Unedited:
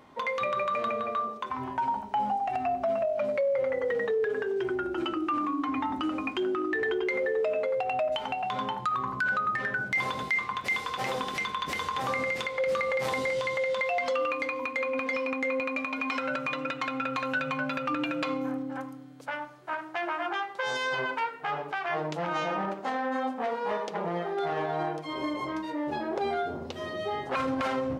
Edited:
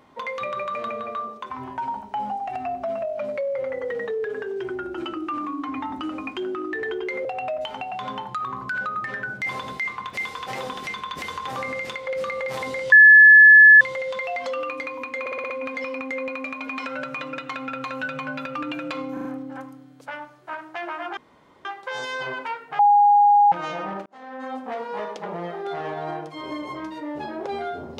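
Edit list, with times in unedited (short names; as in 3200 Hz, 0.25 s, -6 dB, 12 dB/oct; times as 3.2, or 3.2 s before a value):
7.25–7.76 cut
13.43 add tone 1720 Hz -6 dBFS 0.89 s
14.82 stutter 0.06 s, 6 plays
18.45 stutter 0.04 s, 4 plays
20.37 insert room tone 0.48 s
21.51–22.24 bleep 821 Hz -11.5 dBFS
22.78–23.35 fade in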